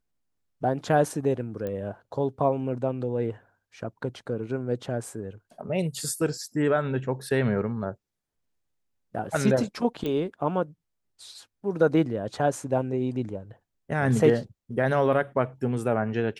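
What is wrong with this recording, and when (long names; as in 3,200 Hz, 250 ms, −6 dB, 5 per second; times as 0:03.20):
0:01.67: click −21 dBFS
0:10.06: click −19 dBFS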